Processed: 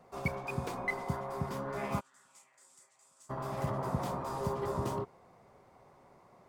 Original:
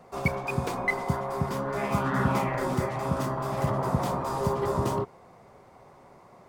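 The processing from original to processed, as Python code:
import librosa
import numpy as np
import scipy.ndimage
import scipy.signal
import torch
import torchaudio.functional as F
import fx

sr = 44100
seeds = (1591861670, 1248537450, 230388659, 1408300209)

y = fx.bandpass_q(x, sr, hz=7700.0, q=4.3, at=(1.99, 3.29), fade=0.02)
y = y * librosa.db_to_amplitude(-7.5)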